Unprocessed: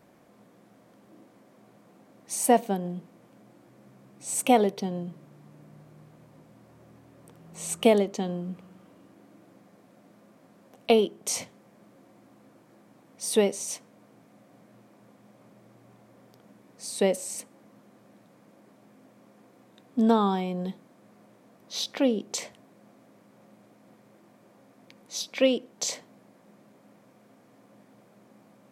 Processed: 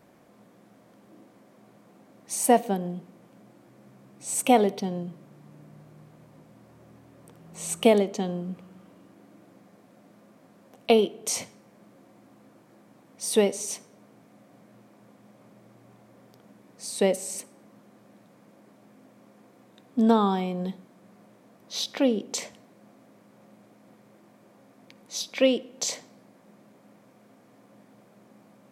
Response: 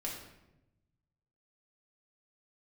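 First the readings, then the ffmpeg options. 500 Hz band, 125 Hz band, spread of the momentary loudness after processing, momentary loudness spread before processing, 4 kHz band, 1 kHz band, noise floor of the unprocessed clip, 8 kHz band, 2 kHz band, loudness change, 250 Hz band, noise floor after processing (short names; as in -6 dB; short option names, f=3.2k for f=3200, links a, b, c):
+1.0 dB, +1.0 dB, 17 LU, 17 LU, +1.0 dB, +1.0 dB, -59 dBFS, +1.0 dB, +1.0 dB, +1.0 dB, +1.0 dB, -57 dBFS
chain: -filter_complex "[0:a]asplit=2[a][b];[1:a]atrim=start_sample=2205,adelay=53[c];[b][c]afir=irnorm=-1:irlink=0,volume=-22.5dB[d];[a][d]amix=inputs=2:normalize=0,volume=1dB"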